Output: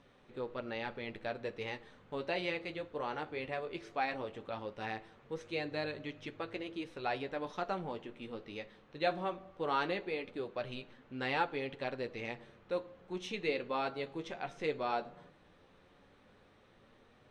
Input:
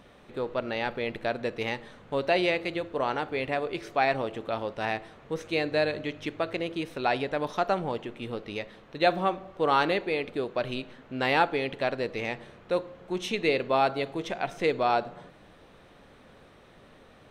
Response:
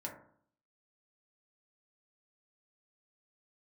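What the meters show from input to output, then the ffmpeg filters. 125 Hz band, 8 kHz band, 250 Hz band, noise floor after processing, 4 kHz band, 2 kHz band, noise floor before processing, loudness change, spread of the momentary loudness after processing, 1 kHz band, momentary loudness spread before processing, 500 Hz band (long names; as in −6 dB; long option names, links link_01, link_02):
−9.5 dB, can't be measured, −9.5 dB, −64 dBFS, −9.5 dB, −9.5 dB, −55 dBFS, −10.0 dB, 10 LU, −10.0 dB, 11 LU, −10.0 dB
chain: -af "lowpass=7900,bandreject=frequency=660:width=12,flanger=delay=7.3:depth=6.2:regen=-42:speed=0.17:shape=triangular,volume=-5.5dB"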